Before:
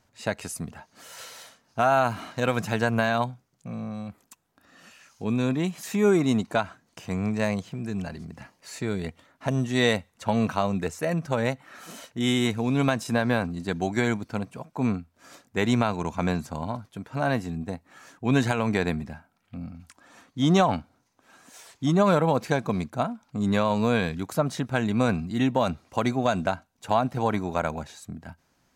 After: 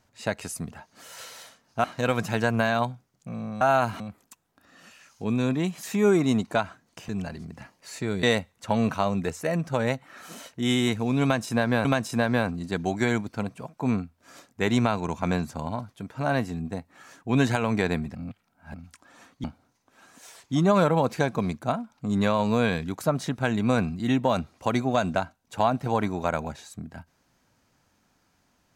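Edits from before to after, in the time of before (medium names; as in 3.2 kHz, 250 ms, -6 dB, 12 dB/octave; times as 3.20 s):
1.84–2.23 s: move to 4.00 s
7.09–7.89 s: delete
9.03–9.81 s: delete
12.81–13.43 s: loop, 2 plays
19.11–19.70 s: reverse
20.40–20.75 s: delete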